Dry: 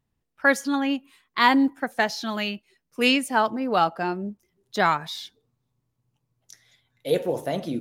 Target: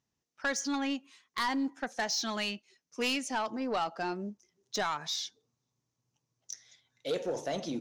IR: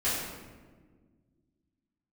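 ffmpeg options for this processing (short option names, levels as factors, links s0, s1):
-af "highpass=f=200:p=1,acompressor=threshold=0.0708:ratio=2.5,lowpass=f=6100:t=q:w=4.6,asoftclip=type=tanh:threshold=0.0944,volume=0.631"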